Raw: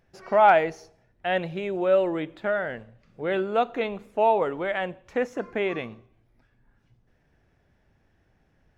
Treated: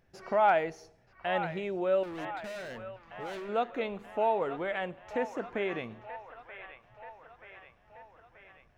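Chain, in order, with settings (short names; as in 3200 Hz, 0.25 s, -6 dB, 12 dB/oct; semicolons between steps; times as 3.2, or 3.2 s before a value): in parallel at +0.5 dB: compressor, threshold -34 dBFS, peak gain reduction 20 dB; 2.03–3.49 on the sum: overloaded stage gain 30.5 dB; band-limited delay 0.931 s, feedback 58%, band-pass 1500 Hz, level -9 dB; gain -8.5 dB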